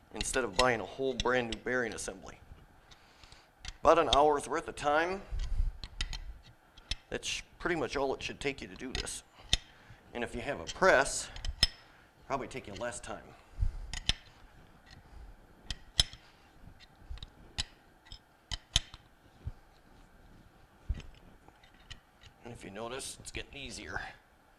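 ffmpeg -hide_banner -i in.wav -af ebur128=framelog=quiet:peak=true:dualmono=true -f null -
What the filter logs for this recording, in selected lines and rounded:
Integrated loudness:
  I:         -30.4 LUFS
  Threshold: -42.4 LUFS
Loudness range:
  LRA:        13.3 LU
  Threshold: -52.5 LUFS
  LRA low:   -41.5 LUFS
  LRA high:  -28.2 LUFS
True peak:
  Peak:       -8.9 dBFS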